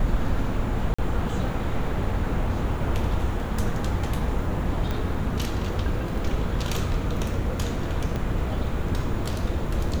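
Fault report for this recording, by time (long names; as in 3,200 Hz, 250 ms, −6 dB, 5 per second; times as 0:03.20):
0:00.94–0:00.98: drop-out 45 ms
0:04.91: click
0:08.16: click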